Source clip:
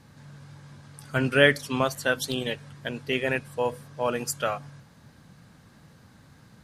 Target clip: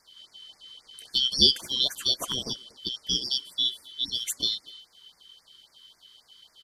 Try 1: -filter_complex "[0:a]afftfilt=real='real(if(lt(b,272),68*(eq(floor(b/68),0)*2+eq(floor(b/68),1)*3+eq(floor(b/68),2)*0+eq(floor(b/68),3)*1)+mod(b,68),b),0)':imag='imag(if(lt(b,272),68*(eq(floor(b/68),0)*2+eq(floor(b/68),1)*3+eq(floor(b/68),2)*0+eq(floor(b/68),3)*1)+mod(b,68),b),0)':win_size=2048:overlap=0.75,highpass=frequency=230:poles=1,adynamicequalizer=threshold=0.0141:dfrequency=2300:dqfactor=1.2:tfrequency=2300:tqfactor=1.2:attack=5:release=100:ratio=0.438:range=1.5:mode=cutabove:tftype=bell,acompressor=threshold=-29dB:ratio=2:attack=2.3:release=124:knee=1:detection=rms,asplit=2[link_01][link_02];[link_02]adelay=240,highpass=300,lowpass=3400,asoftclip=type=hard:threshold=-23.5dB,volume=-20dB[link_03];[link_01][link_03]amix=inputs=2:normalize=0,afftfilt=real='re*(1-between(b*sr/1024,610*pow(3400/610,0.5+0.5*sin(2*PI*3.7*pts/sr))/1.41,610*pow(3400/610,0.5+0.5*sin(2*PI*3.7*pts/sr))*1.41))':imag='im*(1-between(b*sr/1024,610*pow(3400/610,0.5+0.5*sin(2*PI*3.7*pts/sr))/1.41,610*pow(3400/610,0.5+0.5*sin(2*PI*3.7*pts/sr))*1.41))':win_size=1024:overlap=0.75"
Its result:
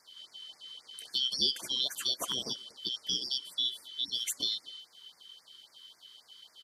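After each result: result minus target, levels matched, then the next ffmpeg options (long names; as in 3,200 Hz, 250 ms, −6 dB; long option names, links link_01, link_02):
downward compressor: peak gain reduction +10.5 dB; 250 Hz band −3.0 dB
-filter_complex "[0:a]afftfilt=real='real(if(lt(b,272),68*(eq(floor(b/68),0)*2+eq(floor(b/68),1)*3+eq(floor(b/68),2)*0+eq(floor(b/68),3)*1)+mod(b,68),b),0)':imag='imag(if(lt(b,272),68*(eq(floor(b/68),0)*2+eq(floor(b/68),1)*3+eq(floor(b/68),2)*0+eq(floor(b/68),3)*1)+mod(b,68),b),0)':win_size=2048:overlap=0.75,highpass=frequency=230:poles=1,adynamicequalizer=threshold=0.0141:dfrequency=2300:dqfactor=1.2:tfrequency=2300:tqfactor=1.2:attack=5:release=100:ratio=0.438:range=1.5:mode=cutabove:tftype=bell,asplit=2[link_01][link_02];[link_02]adelay=240,highpass=300,lowpass=3400,asoftclip=type=hard:threshold=-23.5dB,volume=-20dB[link_03];[link_01][link_03]amix=inputs=2:normalize=0,afftfilt=real='re*(1-between(b*sr/1024,610*pow(3400/610,0.5+0.5*sin(2*PI*3.7*pts/sr))/1.41,610*pow(3400/610,0.5+0.5*sin(2*PI*3.7*pts/sr))*1.41))':imag='im*(1-between(b*sr/1024,610*pow(3400/610,0.5+0.5*sin(2*PI*3.7*pts/sr))/1.41,610*pow(3400/610,0.5+0.5*sin(2*PI*3.7*pts/sr))*1.41))':win_size=1024:overlap=0.75"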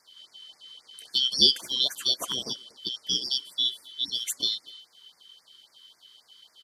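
250 Hz band −2.5 dB
-filter_complex "[0:a]afftfilt=real='real(if(lt(b,272),68*(eq(floor(b/68),0)*2+eq(floor(b/68),1)*3+eq(floor(b/68),2)*0+eq(floor(b/68),3)*1)+mod(b,68),b),0)':imag='imag(if(lt(b,272),68*(eq(floor(b/68),0)*2+eq(floor(b/68),1)*3+eq(floor(b/68),2)*0+eq(floor(b/68),3)*1)+mod(b,68),b),0)':win_size=2048:overlap=0.75,adynamicequalizer=threshold=0.0141:dfrequency=2300:dqfactor=1.2:tfrequency=2300:tqfactor=1.2:attack=5:release=100:ratio=0.438:range=1.5:mode=cutabove:tftype=bell,asplit=2[link_01][link_02];[link_02]adelay=240,highpass=300,lowpass=3400,asoftclip=type=hard:threshold=-23.5dB,volume=-20dB[link_03];[link_01][link_03]amix=inputs=2:normalize=0,afftfilt=real='re*(1-between(b*sr/1024,610*pow(3400/610,0.5+0.5*sin(2*PI*3.7*pts/sr))/1.41,610*pow(3400/610,0.5+0.5*sin(2*PI*3.7*pts/sr))*1.41))':imag='im*(1-between(b*sr/1024,610*pow(3400/610,0.5+0.5*sin(2*PI*3.7*pts/sr))/1.41,610*pow(3400/610,0.5+0.5*sin(2*PI*3.7*pts/sr))*1.41))':win_size=1024:overlap=0.75"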